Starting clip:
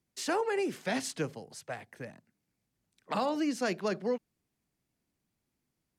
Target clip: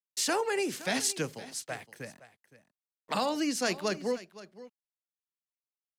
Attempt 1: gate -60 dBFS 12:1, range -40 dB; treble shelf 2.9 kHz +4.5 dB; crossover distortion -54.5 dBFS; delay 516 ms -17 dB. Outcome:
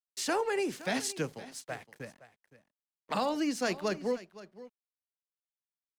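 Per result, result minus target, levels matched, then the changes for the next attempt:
crossover distortion: distortion +8 dB; 8 kHz band -4.5 dB
change: crossover distortion -61.5 dBFS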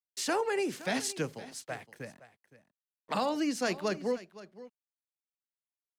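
8 kHz band -4.0 dB
change: treble shelf 2.9 kHz +11 dB

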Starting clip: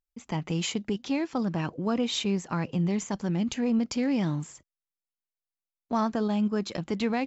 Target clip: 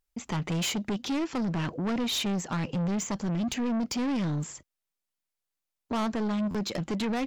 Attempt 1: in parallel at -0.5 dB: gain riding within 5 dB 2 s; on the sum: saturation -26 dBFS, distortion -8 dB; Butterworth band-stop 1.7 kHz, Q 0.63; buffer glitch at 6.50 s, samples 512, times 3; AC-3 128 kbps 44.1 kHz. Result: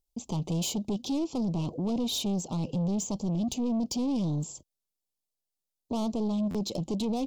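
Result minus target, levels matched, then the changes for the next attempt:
2 kHz band -15.5 dB
remove: Butterworth band-stop 1.7 kHz, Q 0.63

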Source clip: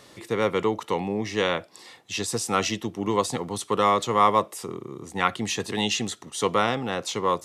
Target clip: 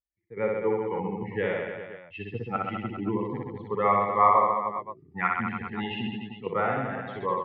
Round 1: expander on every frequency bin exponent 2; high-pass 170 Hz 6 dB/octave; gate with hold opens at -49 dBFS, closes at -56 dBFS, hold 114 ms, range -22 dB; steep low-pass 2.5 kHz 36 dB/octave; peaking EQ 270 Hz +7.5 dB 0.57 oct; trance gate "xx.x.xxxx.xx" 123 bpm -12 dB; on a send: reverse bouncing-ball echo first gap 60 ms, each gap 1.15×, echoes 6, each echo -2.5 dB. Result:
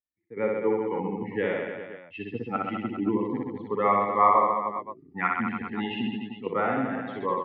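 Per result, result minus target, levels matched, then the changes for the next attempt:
125 Hz band -3.0 dB; 250 Hz band +3.0 dB
remove: high-pass 170 Hz 6 dB/octave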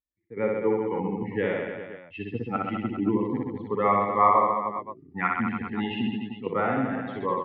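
250 Hz band +4.0 dB
change: peaking EQ 270 Hz -2.5 dB 0.57 oct

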